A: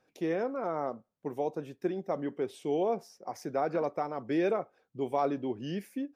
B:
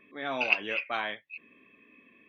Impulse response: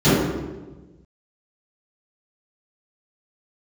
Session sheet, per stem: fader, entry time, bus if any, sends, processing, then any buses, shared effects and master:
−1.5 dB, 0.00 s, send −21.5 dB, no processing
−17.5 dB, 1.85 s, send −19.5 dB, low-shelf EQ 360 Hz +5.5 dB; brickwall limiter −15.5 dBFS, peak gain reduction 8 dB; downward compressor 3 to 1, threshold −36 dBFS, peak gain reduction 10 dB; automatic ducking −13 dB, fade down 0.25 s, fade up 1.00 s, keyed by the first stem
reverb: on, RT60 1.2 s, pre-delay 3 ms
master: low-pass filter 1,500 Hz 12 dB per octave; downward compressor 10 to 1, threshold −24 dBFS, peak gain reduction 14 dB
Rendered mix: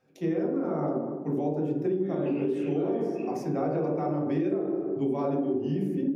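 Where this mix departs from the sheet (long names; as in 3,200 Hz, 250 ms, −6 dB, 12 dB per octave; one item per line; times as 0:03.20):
stem B −17.5 dB → −6.5 dB
master: missing low-pass filter 1,500 Hz 12 dB per octave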